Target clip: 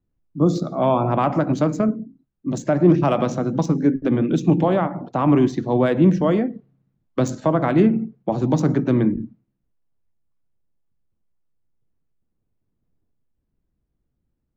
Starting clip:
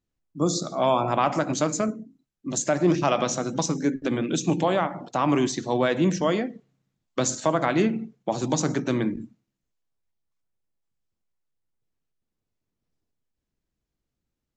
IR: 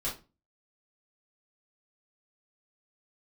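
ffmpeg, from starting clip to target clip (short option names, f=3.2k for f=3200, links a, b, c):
-filter_complex "[0:a]lowshelf=f=410:g=10,acrossover=split=370|1700[a][b][c];[c]adynamicsmooth=sensitivity=1:basefreq=2.9k[d];[a][b][d]amix=inputs=3:normalize=0"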